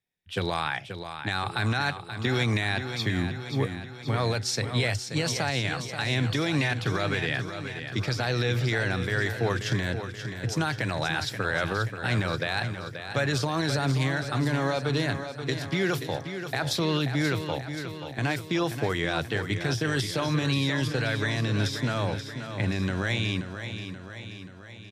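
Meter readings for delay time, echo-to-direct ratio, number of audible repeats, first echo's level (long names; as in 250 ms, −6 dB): 531 ms, −7.0 dB, 6, −9.0 dB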